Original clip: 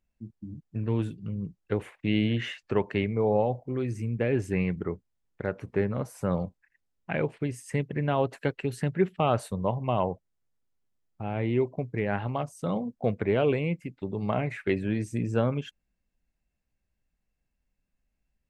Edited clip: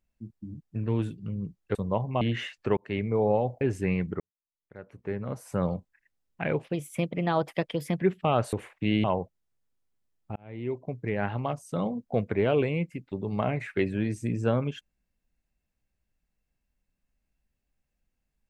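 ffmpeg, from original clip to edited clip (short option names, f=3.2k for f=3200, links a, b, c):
-filter_complex "[0:a]asplit=11[a][b][c][d][e][f][g][h][i][j][k];[a]atrim=end=1.752[l];[b]atrim=start=9.478:end=9.942[m];[c]atrim=start=2.258:end=2.82,asetpts=PTS-STARTPTS,afade=t=out:st=0.558:d=0.004:c=hsin[n];[d]atrim=start=2.82:end=3.662,asetpts=PTS-STARTPTS,afade=t=in:d=0.26[o];[e]atrim=start=4.298:end=4.89,asetpts=PTS-STARTPTS,afade=t=out:st=0.588:d=0.004:c=hsin[p];[f]atrim=start=4.89:end=7.334,asetpts=PTS-STARTPTS,afade=t=in:d=1.32:c=qua[q];[g]atrim=start=7.33:end=8.97,asetpts=PTS-STARTPTS,asetrate=52479,aresample=44100,atrim=end_sample=60776,asetpts=PTS-STARTPTS[r];[h]atrim=start=8.966:end=9.482[s];[i]atrim=start=1.748:end=2.262[t];[j]atrim=start=9.938:end=11.26,asetpts=PTS-STARTPTS,afade=t=out:st=1.318:d=0.004:c=hsin[u];[k]atrim=start=11.26,asetpts=PTS-STARTPTS,afade=t=in:d=1.07:c=qsin[v];[l][m]acrossfade=d=0.004:c1=hsin:c2=hsin[w];[n][o]concat=n=2:v=0:a=1[x];[w][x]acrossfade=d=0.004:c1=hsin:c2=hsin[y];[p][q]concat=n=2:v=0:a=1[z];[y][z]acrossfade=d=0.004:c1=hsin:c2=hsin[aa];[aa][r]acrossfade=d=0.004:c1=hsin:c2=hsin[ab];[ab][s]acrossfade=d=0.004:c1=hsin:c2=hsin[ac];[ac][t]acrossfade=d=0.004:c1=hsin:c2=hsin[ad];[u][v]concat=n=2:v=0:a=1[ae];[ad][ae]acrossfade=d=0.004:c1=hsin:c2=hsin"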